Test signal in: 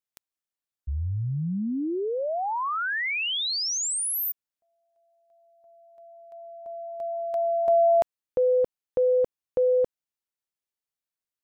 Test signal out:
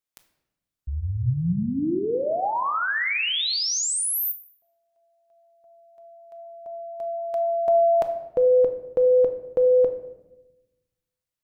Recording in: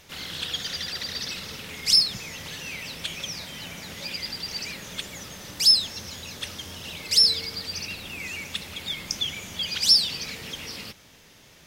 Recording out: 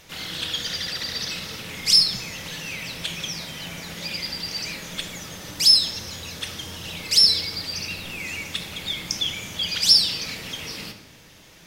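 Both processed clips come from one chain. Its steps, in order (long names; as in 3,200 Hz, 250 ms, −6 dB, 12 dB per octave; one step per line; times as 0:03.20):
rectangular room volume 410 cubic metres, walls mixed, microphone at 0.62 metres
level +2 dB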